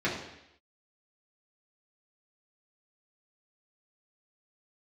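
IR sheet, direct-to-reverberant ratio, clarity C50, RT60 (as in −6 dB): −7.5 dB, 5.0 dB, 0.80 s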